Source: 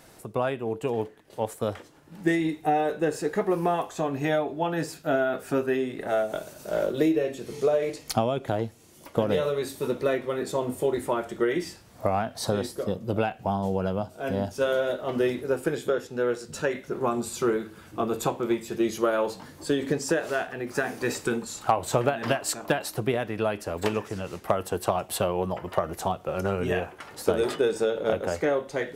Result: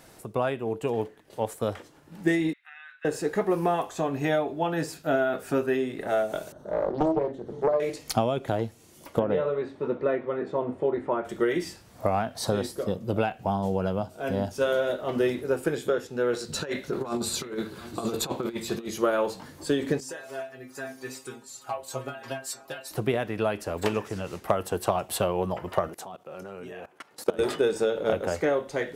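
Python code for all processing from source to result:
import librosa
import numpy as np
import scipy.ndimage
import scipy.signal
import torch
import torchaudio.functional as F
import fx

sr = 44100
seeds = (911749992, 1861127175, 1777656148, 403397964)

y = fx.chain(x, sr, fx.steep_highpass(hz=1500.0, slope=36),
    fx.air_absorb(metres=490.0), at=(2.53, 3.05))
y = fx.chain(y, sr, fx.moving_average(points=18),
    fx.doppler_dist(depth_ms=0.78), at=(6.52, 7.8))
y = fx.chain(y, sr, fx.lowpass(hz=1700.0, slope=12),
    fx.low_shelf(hz=90.0, db=-11.0), at=(9.19, 11.25))
y = fx.chain(y, sr, fx.peak_eq(hz=4100.0, db=9.5, octaves=0.33),
    fx.over_compress(threshold_db=-29.0, ratio=-0.5),
    fx.echo_single(ms=715, db=-16.0), at=(16.33, 18.88))
y = fx.chain(y, sr, fx.bass_treble(bass_db=-6, treble_db=4),
    fx.stiff_resonator(f0_hz=130.0, decay_s=0.25, stiffness=0.002), at=(20.0, 22.91))
y = fx.chain(y, sr, fx.highpass(hz=170.0, slope=12),
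    fx.level_steps(step_db=20), at=(25.88, 27.39))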